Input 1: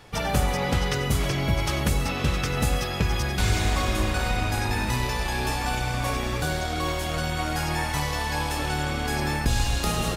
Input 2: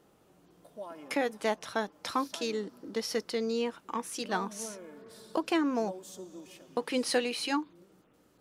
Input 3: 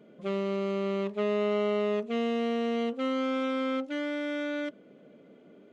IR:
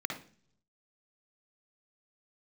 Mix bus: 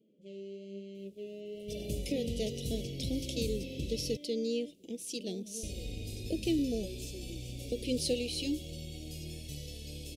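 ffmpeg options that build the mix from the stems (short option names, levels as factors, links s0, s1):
-filter_complex "[0:a]adelay=1550,volume=0.2,asplit=3[s0][s1][s2];[s0]atrim=end=4.17,asetpts=PTS-STARTPTS,afade=t=out:st=4.166:d=0.004:c=hsin[s3];[s1]atrim=start=4.17:end=5.63,asetpts=PTS-STARTPTS,volume=0[s4];[s2]atrim=start=5.63,asetpts=PTS-STARTPTS,afade=t=in:d=0.004:c=hsin[s5];[s3][s4][s5]concat=n=3:v=0:a=1[s6];[1:a]adelay=950,volume=0.841[s7];[2:a]highshelf=f=5100:g=5.5,bandreject=f=3700:w=12,flanger=delay=9.2:depth=3.7:regen=55:speed=1.1:shape=sinusoidal,volume=0.316[s8];[s6][s7][s8]amix=inputs=3:normalize=0,asuperstop=centerf=1200:order=8:qfactor=0.54"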